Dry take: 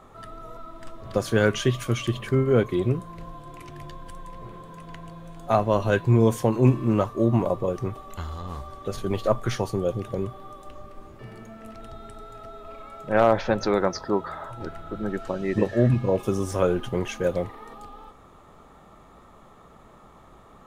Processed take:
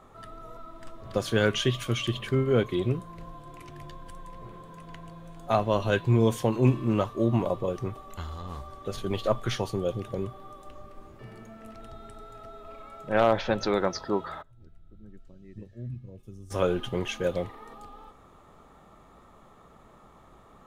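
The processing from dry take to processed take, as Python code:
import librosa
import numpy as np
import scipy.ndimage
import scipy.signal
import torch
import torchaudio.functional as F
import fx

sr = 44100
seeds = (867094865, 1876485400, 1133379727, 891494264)

y = fx.tone_stack(x, sr, knobs='10-0-1', at=(14.41, 16.5), fade=0.02)
y = fx.dynamic_eq(y, sr, hz=3300.0, q=1.6, threshold_db=-50.0, ratio=4.0, max_db=7)
y = F.gain(torch.from_numpy(y), -3.5).numpy()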